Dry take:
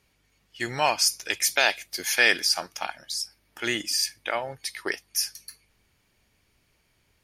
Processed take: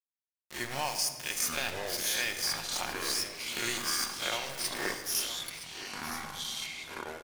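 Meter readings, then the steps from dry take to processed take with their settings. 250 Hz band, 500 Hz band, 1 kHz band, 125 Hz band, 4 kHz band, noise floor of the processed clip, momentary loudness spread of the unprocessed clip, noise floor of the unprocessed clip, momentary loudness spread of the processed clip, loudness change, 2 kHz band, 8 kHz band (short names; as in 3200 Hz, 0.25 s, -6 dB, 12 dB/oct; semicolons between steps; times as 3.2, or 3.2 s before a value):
-5.0 dB, -8.0 dB, -7.0 dB, -3.0 dB, -5.0 dB, under -85 dBFS, 14 LU, -69 dBFS, 9 LU, -7.0 dB, -9.0 dB, -4.0 dB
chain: spectral swells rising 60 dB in 0.54 s; in parallel at -2 dB: vocal rider 0.5 s; on the sum: tilt -2 dB/oct; transient shaper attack +1 dB, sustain -4 dB; pre-emphasis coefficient 0.8; compressor 2.5:1, threshold -32 dBFS, peak gain reduction 9 dB; sample gate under -34 dBFS; on a send: echo 0.966 s -13 dB; on the sum: shoebox room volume 1600 m³, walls mixed, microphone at 0.95 m; echoes that change speed 0.587 s, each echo -7 st, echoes 2, each echo -6 dB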